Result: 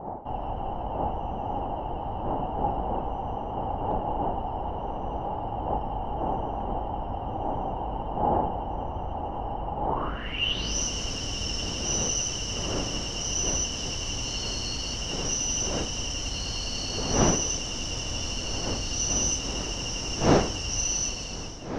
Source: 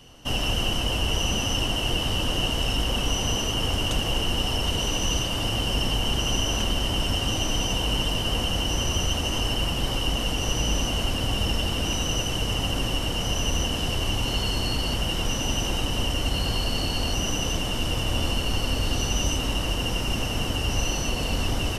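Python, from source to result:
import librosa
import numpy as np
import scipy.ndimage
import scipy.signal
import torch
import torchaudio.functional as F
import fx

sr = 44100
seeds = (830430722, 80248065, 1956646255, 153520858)

y = fx.fade_out_tail(x, sr, length_s=0.75)
y = fx.dmg_wind(y, sr, seeds[0], corner_hz=510.0, level_db=-27.0)
y = fx.filter_sweep_lowpass(y, sr, from_hz=830.0, to_hz=5800.0, start_s=9.88, end_s=10.77, q=7.0)
y = y * 10.0 ** (-8.5 / 20.0)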